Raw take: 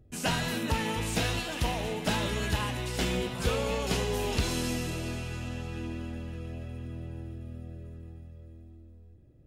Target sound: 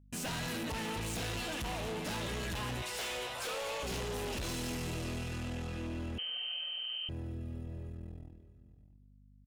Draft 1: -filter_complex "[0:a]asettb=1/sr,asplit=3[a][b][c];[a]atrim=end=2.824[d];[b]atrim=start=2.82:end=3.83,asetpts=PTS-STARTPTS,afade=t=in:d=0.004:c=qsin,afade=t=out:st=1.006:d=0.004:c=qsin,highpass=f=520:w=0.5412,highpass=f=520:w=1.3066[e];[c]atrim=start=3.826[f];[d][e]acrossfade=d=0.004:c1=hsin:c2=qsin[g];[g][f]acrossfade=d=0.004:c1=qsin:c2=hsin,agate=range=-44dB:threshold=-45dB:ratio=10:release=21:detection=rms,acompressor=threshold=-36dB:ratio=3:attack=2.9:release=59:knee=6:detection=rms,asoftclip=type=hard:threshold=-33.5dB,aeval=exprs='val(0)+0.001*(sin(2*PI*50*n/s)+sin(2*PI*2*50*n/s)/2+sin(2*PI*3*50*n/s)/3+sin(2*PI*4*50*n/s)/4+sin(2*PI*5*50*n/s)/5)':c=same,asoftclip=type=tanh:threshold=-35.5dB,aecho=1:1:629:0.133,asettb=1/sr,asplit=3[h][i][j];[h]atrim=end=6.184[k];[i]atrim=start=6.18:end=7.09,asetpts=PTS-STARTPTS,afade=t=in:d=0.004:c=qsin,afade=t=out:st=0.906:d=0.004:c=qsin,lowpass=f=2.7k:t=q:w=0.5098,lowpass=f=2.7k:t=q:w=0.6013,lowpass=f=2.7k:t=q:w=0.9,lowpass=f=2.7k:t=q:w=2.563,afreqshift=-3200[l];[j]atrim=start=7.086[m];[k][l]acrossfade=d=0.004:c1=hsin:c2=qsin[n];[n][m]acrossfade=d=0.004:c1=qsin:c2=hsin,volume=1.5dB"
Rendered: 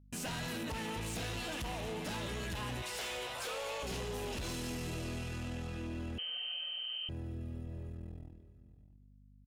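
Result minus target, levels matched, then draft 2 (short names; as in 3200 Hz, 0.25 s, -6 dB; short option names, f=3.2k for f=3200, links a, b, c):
compressor: peak gain reduction +6 dB
-filter_complex "[0:a]asettb=1/sr,asplit=3[a][b][c];[a]atrim=end=2.824[d];[b]atrim=start=2.82:end=3.83,asetpts=PTS-STARTPTS,afade=t=in:d=0.004:c=qsin,afade=t=out:st=1.006:d=0.004:c=qsin,highpass=f=520:w=0.5412,highpass=f=520:w=1.3066[e];[c]atrim=start=3.826[f];[d][e]acrossfade=d=0.004:c1=hsin:c2=qsin[g];[g][f]acrossfade=d=0.004:c1=qsin:c2=hsin,agate=range=-44dB:threshold=-45dB:ratio=10:release=21:detection=rms,acompressor=threshold=-27dB:ratio=3:attack=2.9:release=59:knee=6:detection=rms,asoftclip=type=hard:threshold=-33.5dB,aeval=exprs='val(0)+0.001*(sin(2*PI*50*n/s)+sin(2*PI*2*50*n/s)/2+sin(2*PI*3*50*n/s)/3+sin(2*PI*4*50*n/s)/4+sin(2*PI*5*50*n/s)/5)':c=same,asoftclip=type=tanh:threshold=-35.5dB,aecho=1:1:629:0.133,asettb=1/sr,asplit=3[h][i][j];[h]atrim=end=6.184[k];[i]atrim=start=6.18:end=7.09,asetpts=PTS-STARTPTS,afade=t=in:d=0.004:c=qsin,afade=t=out:st=0.906:d=0.004:c=qsin,lowpass=f=2.7k:t=q:w=0.5098,lowpass=f=2.7k:t=q:w=0.6013,lowpass=f=2.7k:t=q:w=0.9,lowpass=f=2.7k:t=q:w=2.563,afreqshift=-3200[l];[j]atrim=start=7.086[m];[k][l]acrossfade=d=0.004:c1=hsin:c2=qsin[n];[n][m]acrossfade=d=0.004:c1=qsin:c2=hsin,volume=1.5dB"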